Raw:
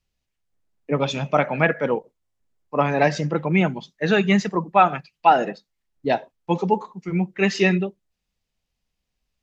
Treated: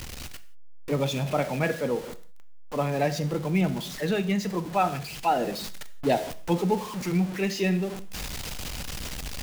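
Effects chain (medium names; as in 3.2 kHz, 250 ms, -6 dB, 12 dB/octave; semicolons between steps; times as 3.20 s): jump at every zero crossing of -26.5 dBFS; dynamic bell 1.4 kHz, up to -7 dB, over -32 dBFS, Q 0.71; gain riding within 4 dB 0.5 s; gated-style reverb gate 200 ms falling, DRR 11.5 dB; trim -5 dB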